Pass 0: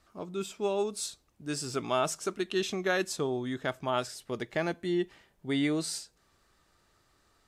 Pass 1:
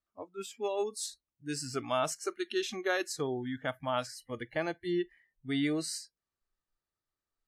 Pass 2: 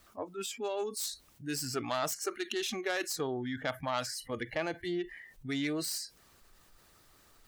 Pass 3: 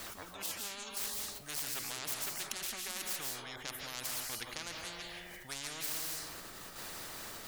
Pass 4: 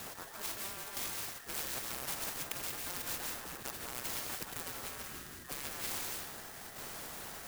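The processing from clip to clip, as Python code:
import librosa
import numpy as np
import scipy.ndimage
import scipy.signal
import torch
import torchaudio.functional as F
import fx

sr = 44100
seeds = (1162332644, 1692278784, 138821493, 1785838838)

y1 = fx.noise_reduce_blind(x, sr, reduce_db=24)
y1 = y1 * librosa.db_to_amplitude(-2.0)
y2 = fx.self_delay(y1, sr, depth_ms=0.08)
y2 = fx.hpss(y2, sr, part='percussive', gain_db=5)
y2 = fx.env_flatten(y2, sr, amount_pct=50)
y2 = y2 * librosa.db_to_amplitude(-5.5)
y3 = fx.tremolo_shape(y2, sr, shape='saw_down', hz=0.74, depth_pct=40)
y3 = fx.rev_freeverb(y3, sr, rt60_s=0.63, hf_ratio=0.35, predelay_ms=120, drr_db=6.5)
y3 = fx.spectral_comp(y3, sr, ratio=10.0)
y3 = y3 * librosa.db_to_amplitude(4.5)
y4 = fx.band_invert(y3, sr, width_hz=2000)
y4 = fx.clock_jitter(y4, sr, seeds[0], jitter_ms=0.086)
y4 = y4 * librosa.db_to_amplitude(1.0)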